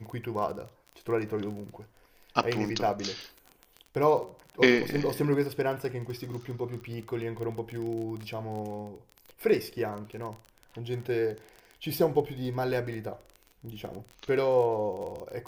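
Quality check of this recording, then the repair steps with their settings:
crackle 24 per s -34 dBFS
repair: de-click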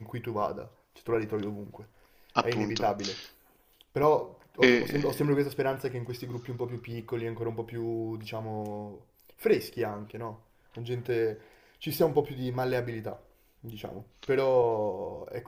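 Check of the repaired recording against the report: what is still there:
nothing left

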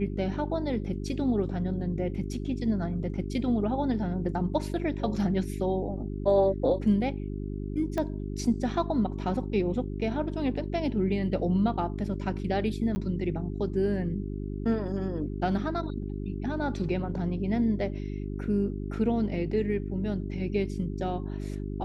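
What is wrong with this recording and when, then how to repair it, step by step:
hum 50 Hz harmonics 8 -34 dBFS
7.98 s: pop -18 dBFS
12.95–12.96 s: dropout 10 ms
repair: de-click; de-hum 50 Hz, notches 8; interpolate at 12.95 s, 10 ms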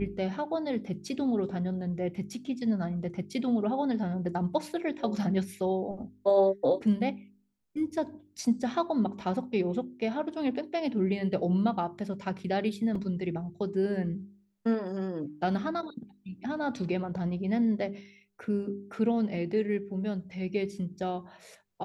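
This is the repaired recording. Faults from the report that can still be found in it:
7.98 s: pop

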